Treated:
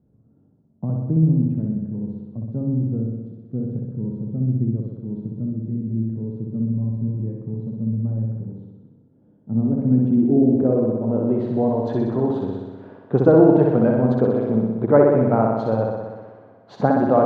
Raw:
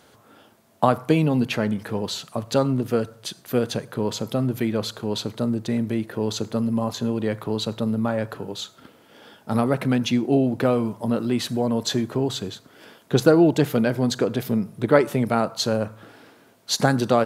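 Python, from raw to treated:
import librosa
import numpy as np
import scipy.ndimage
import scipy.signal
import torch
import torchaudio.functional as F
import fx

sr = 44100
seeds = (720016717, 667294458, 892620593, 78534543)

y = fx.room_flutter(x, sr, wall_m=10.7, rt60_s=1.3)
y = fx.filter_sweep_lowpass(y, sr, from_hz=180.0, to_hz=880.0, start_s=9.18, end_s=11.94, q=1.1)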